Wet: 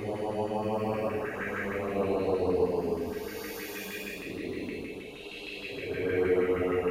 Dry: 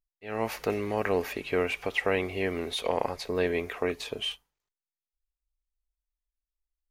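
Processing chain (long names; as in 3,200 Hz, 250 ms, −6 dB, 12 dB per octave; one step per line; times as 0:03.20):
echo through a band-pass that steps 192 ms, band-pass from 180 Hz, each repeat 0.7 octaves, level −7.5 dB
extreme stretch with random phases 9.6×, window 0.10 s, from 0:00.90
auto-filter notch saw up 6.4 Hz 590–2,500 Hz
level −2 dB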